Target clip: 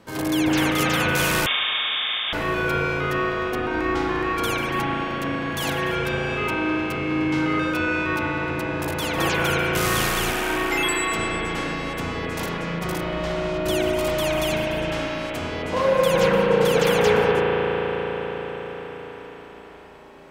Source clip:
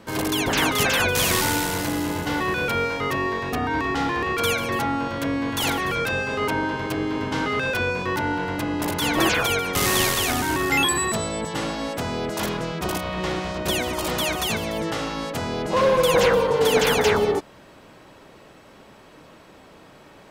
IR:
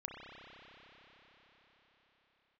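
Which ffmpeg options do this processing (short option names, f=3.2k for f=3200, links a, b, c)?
-filter_complex "[1:a]atrim=start_sample=2205,asetrate=37485,aresample=44100[a];[0:a][a]afir=irnorm=-1:irlink=0,asettb=1/sr,asplit=3[b][c][d];[b]atrim=end=1.464[e];[c]atrim=start=1.46:end=2.33,asetpts=PTS-STARTPTS,afade=t=in:d=0.004:c=qsin,afade=t=out:st=0.866:d=0.004:c=qsin,lowpass=f=3.1k:t=q:w=0.5098,lowpass=f=3.1k:t=q:w=0.6013,lowpass=f=3.1k:t=q:w=0.9,lowpass=f=3.1k:t=q:w=2.563,afreqshift=-3700[f];[d]atrim=start=2.326[g];[e][f]acrossfade=d=0.004:c1=hsin:c2=qsin[h];[h][g]acrossfade=d=0.004:c1=qsin:c2=hsin,asettb=1/sr,asplit=3[i][j][k];[i]atrim=end=10.304[l];[j]atrim=start=10.3:end=11.18,asetpts=PTS-STARTPTS,afade=t=in:d=0.004:c=qsin,afade=t=out:st=0.876:d=0.004:c=qsin,equalizer=f=71:w=0.34:g=-8.5[m];[k]atrim=start=11.176[n];[l][m]acrossfade=d=0.004:c1=hsin:c2=qsin[o];[o][n]acrossfade=d=0.004:c1=qsin:c2=hsin"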